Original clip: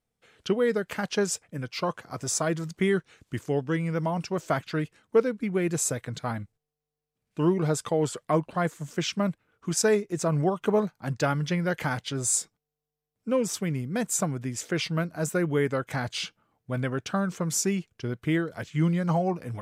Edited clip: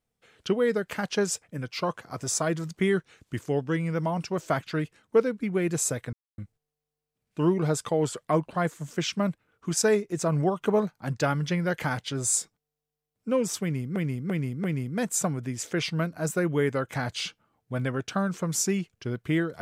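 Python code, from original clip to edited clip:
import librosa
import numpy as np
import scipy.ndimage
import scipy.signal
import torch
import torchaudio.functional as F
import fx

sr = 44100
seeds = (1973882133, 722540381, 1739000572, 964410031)

y = fx.edit(x, sr, fx.silence(start_s=6.13, length_s=0.25),
    fx.repeat(start_s=13.62, length_s=0.34, count=4), tone=tone)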